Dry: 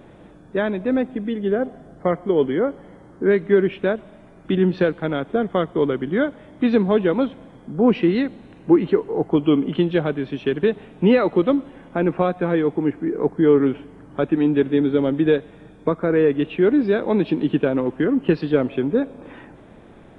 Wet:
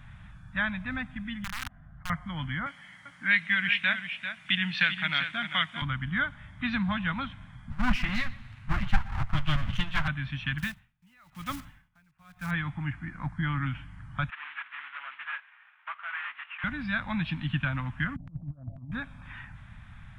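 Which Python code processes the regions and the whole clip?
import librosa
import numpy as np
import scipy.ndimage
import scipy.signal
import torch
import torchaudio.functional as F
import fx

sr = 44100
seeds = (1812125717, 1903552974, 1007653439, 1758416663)

y = fx.chain(x, sr, fx.lowpass(hz=1900.0, slope=12),
    fx.level_steps(step_db=16),
    fx.overflow_wrap(gain_db=26.5), at=(1.44, 2.1))
y = fx.chain(y, sr, fx.highpass(hz=270.0, slope=12),
    fx.high_shelf_res(hz=1700.0, db=8.5, q=1.5),
    fx.echo_single(ms=394, db=-9.0), at=(2.66, 5.82))
y = fx.chain(y, sr, fx.lower_of_two(delay_ms=8.9),
    fx.echo_feedback(ms=122, feedback_pct=40, wet_db=-21), at=(7.7, 10.08))
y = fx.chain(y, sr, fx.block_float(bits=5),
    fx.tremolo_db(hz=1.0, depth_db=37), at=(10.58, 12.53))
y = fx.chain(y, sr, fx.cvsd(bps=16000),
    fx.highpass(hz=970.0, slope=24),
    fx.tilt_eq(slope=-3.5), at=(14.3, 16.64))
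y = fx.chain(y, sr, fx.steep_lowpass(hz=710.0, slope=72),
    fx.over_compress(threshold_db=-29.0, ratio=-1.0),
    fx.low_shelf(hz=390.0, db=-6.5), at=(18.16, 18.92))
y = scipy.signal.sosfilt(scipy.signal.cheby1(2, 1.0, [100.0, 1700.0], 'bandstop', fs=sr, output='sos'), y)
y = fx.high_shelf(y, sr, hz=2200.0, db=-10.5)
y = F.gain(torch.from_numpy(y), 7.0).numpy()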